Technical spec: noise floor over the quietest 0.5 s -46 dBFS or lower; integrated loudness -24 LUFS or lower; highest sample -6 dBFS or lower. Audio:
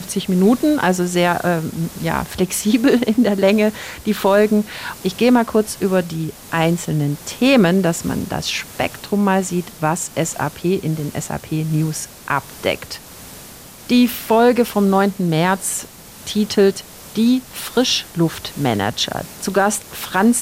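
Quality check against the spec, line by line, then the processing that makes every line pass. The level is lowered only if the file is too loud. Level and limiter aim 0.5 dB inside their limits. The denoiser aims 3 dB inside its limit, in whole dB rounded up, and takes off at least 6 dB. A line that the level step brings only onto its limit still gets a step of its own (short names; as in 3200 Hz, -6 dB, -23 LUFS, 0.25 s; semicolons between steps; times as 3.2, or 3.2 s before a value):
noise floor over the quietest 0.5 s -39 dBFS: fail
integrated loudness -18.0 LUFS: fail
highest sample -3.5 dBFS: fail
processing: denoiser 6 dB, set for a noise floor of -39 dBFS; gain -6.5 dB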